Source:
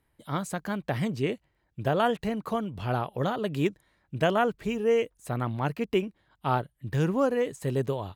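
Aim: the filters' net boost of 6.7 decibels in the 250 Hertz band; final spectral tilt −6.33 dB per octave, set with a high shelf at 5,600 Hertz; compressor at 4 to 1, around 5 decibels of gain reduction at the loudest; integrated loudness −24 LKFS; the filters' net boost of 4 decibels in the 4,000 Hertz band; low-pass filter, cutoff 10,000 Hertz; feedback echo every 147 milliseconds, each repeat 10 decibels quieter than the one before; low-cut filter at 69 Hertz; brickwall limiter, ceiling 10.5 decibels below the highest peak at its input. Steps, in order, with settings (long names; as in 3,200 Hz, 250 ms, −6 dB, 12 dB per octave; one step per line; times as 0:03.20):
high-pass filter 69 Hz
low-pass filter 10,000 Hz
parametric band 250 Hz +8.5 dB
parametric band 4,000 Hz +4.5 dB
high-shelf EQ 5,600 Hz +4 dB
downward compressor 4 to 1, threshold −22 dBFS
brickwall limiter −22.5 dBFS
repeating echo 147 ms, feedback 32%, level −10 dB
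level +8.5 dB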